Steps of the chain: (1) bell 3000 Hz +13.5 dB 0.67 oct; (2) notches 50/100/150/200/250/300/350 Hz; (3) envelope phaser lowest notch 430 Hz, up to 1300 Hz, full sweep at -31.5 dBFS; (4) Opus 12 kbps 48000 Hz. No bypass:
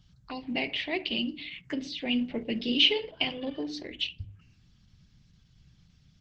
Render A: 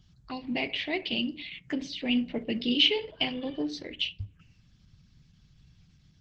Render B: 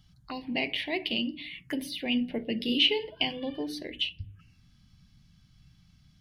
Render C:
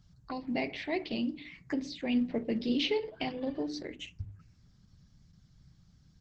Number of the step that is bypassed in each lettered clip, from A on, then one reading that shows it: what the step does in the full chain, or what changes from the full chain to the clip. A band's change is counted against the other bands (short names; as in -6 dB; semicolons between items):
2, 125 Hz band +1.5 dB; 4, crest factor change -3.5 dB; 1, 4 kHz band -12.5 dB